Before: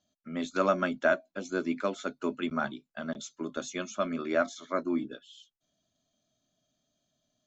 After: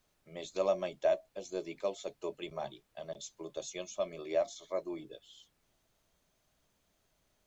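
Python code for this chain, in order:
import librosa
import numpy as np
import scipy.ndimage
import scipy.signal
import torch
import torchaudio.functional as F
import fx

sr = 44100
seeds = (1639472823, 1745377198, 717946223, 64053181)

y = fx.fixed_phaser(x, sr, hz=590.0, stages=4)
y = fx.dmg_noise_colour(y, sr, seeds[0], colour='pink', level_db=-74.0)
y = y * librosa.db_to_amplitude(-2.0)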